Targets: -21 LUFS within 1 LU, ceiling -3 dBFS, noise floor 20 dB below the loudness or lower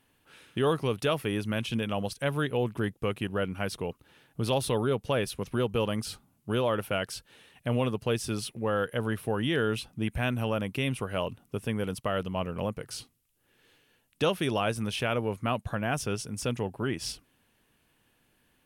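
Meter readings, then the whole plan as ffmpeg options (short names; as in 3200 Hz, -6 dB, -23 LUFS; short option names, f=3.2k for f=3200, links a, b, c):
loudness -30.5 LUFS; peak -14.5 dBFS; loudness target -21.0 LUFS
-> -af "volume=9.5dB"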